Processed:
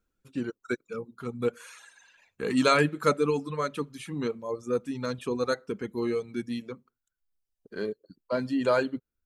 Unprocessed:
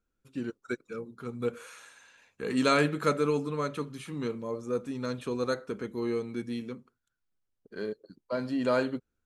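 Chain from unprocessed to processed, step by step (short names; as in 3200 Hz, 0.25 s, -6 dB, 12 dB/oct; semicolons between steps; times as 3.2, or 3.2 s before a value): reverb removal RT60 1.1 s; gain +3.5 dB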